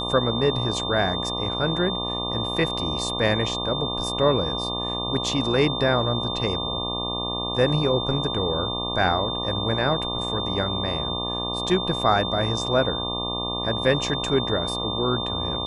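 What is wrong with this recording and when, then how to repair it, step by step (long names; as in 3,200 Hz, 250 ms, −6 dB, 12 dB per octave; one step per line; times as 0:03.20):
mains buzz 60 Hz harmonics 20 −31 dBFS
whistle 3,600 Hz −28 dBFS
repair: hum removal 60 Hz, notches 20
notch filter 3,600 Hz, Q 30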